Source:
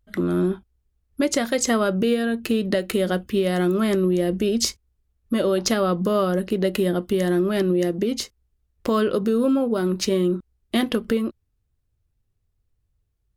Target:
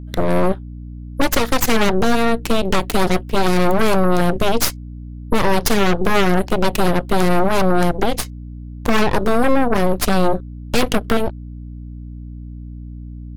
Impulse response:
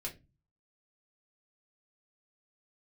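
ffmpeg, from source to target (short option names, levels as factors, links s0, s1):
-af "aeval=exprs='0.422*(cos(1*acos(clip(val(0)/0.422,-1,1)))-cos(1*PI/2))+0.075*(cos(3*acos(clip(val(0)/0.422,-1,1)))-cos(3*PI/2))+0.119*(cos(8*acos(clip(val(0)/0.422,-1,1)))-cos(8*PI/2))':c=same,aeval=exprs='val(0)+0.02*(sin(2*PI*60*n/s)+sin(2*PI*2*60*n/s)/2+sin(2*PI*3*60*n/s)/3+sin(2*PI*4*60*n/s)/4+sin(2*PI*5*60*n/s)/5)':c=same,volume=1.5"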